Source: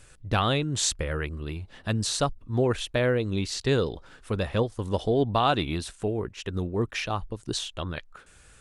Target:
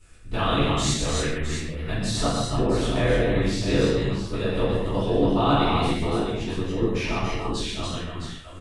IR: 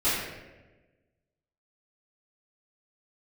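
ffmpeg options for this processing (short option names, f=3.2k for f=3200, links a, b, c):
-filter_complex "[0:a]tremolo=f=83:d=1,aecho=1:1:121|284|285|661:0.501|0.398|0.531|0.355[a];[1:a]atrim=start_sample=2205,afade=t=out:st=0.24:d=0.01,atrim=end_sample=11025[b];[a][b]afir=irnorm=-1:irlink=0,volume=-8dB"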